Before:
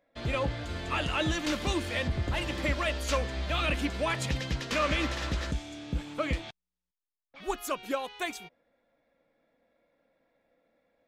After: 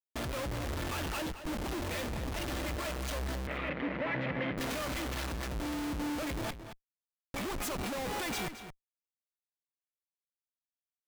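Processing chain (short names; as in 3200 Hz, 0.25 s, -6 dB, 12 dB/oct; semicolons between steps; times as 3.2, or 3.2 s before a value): low shelf 260 Hz +2.5 dB; comb 3.5 ms, depth 30%; 1.32–2.95 fade in; compressor 16:1, threshold -34 dBFS, peak gain reduction 14 dB; Schmitt trigger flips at -48.5 dBFS; 3.47–4.58 speaker cabinet 130–2900 Hz, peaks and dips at 160 Hz +7 dB, 270 Hz +5 dB, 520 Hz +7 dB, 2000 Hz +9 dB; outdoor echo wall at 38 m, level -10 dB; gain +4.5 dB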